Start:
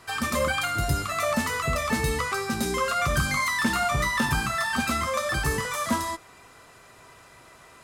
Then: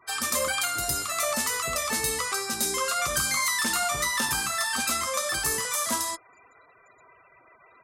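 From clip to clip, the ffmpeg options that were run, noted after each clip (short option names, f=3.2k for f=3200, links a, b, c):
-af "afftfilt=real='re*gte(hypot(re,im),0.00501)':imag='im*gte(hypot(re,im),0.00501)':win_size=1024:overlap=0.75,bass=f=250:g=-11,treble=f=4k:g=12,volume=-3dB"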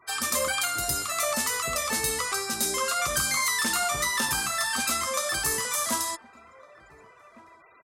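-filter_complex "[0:a]asplit=2[a][b];[b]adelay=1458,volume=-19dB,highshelf=f=4k:g=-32.8[c];[a][c]amix=inputs=2:normalize=0"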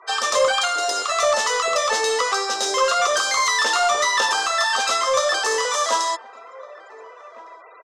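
-filter_complex "[0:a]highpass=f=460:w=0.5412,highpass=f=460:w=1.3066,equalizer=f=470:t=q:w=4:g=6,equalizer=f=1.5k:t=q:w=4:g=-4,equalizer=f=2.3k:t=q:w=4:g=-10,equalizer=f=4.5k:t=q:w=4:g=-6,lowpass=f=5.8k:w=0.5412,lowpass=f=5.8k:w=1.3066,asplit=2[a][b];[b]asoftclip=type=tanh:threshold=-28.5dB,volume=-4dB[c];[a][c]amix=inputs=2:normalize=0,volume=8dB"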